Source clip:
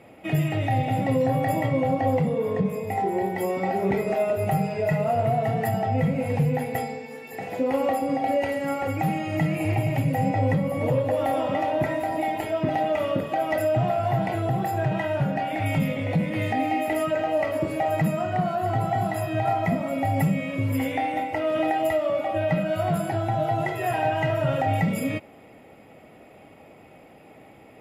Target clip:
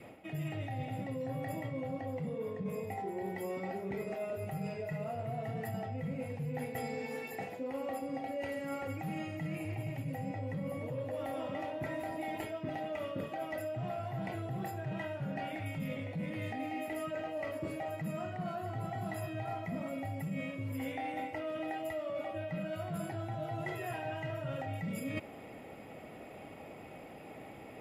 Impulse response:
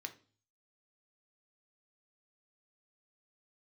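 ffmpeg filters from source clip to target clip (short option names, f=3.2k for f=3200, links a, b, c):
-af "adynamicequalizer=threshold=0.0112:dfrequency=780:dqfactor=2.7:tfrequency=780:tqfactor=2.7:attack=5:release=100:ratio=0.375:range=2.5:mode=cutabove:tftype=bell,areverse,acompressor=threshold=-35dB:ratio=16,areverse"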